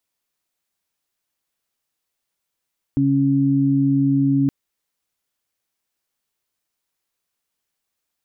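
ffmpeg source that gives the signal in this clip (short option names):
-f lavfi -i "aevalsrc='0.106*sin(2*PI*138*t)+0.168*sin(2*PI*276*t)':d=1.52:s=44100"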